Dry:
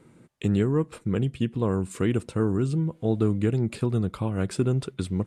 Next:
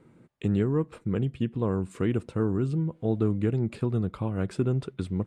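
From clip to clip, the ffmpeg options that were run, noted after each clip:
ffmpeg -i in.wav -af "highshelf=frequency=4100:gain=-11,volume=-2dB" out.wav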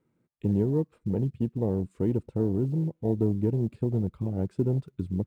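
ffmpeg -i in.wav -af "acrusher=bits=6:mode=log:mix=0:aa=0.000001,afwtdn=0.0447" out.wav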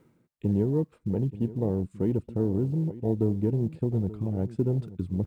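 ffmpeg -i in.wav -af "areverse,acompressor=mode=upward:threshold=-27dB:ratio=2.5,areverse,aecho=1:1:880:0.158" out.wav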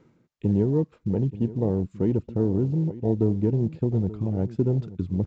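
ffmpeg -i in.wav -af "aresample=16000,aresample=44100,volume=3dB" out.wav

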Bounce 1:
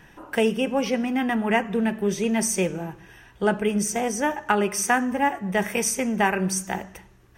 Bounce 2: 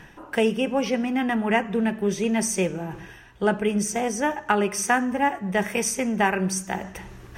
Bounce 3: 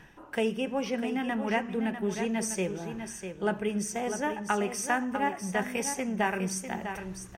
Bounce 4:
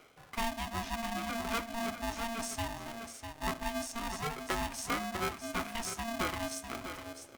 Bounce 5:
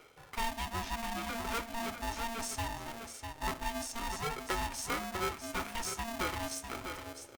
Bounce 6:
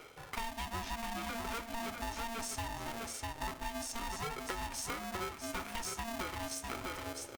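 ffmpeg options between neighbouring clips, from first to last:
ffmpeg -i in.wav -af "areverse,acompressor=mode=upward:threshold=-30dB:ratio=2.5,areverse,highshelf=frequency=12000:gain=-7.5" out.wav
ffmpeg -i in.wav -af "aecho=1:1:649:0.376,volume=-7dB" out.wav
ffmpeg -i in.wav -af "flanger=delay=3.3:depth=6.7:regen=-77:speed=0.32:shape=sinusoidal,aeval=exprs='val(0)*sgn(sin(2*PI*460*n/s))':channel_layout=same,volume=-2dB" out.wav
ffmpeg -i in.wav -filter_complex "[0:a]aecho=1:1:2.2:0.37,asplit=2[link_01][link_02];[link_02]aeval=exprs='(mod(33.5*val(0)+1,2)-1)/33.5':channel_layout=same,volume=-11.5dB[link_03];[link_01][link_03]amix=inputs=2:normalize=0,volume=-1.5dB" out.wav
ffmpeg -i in.wav -af "acompressor=threshold=-42dB:ratio=6,volume=5dB" out.wav

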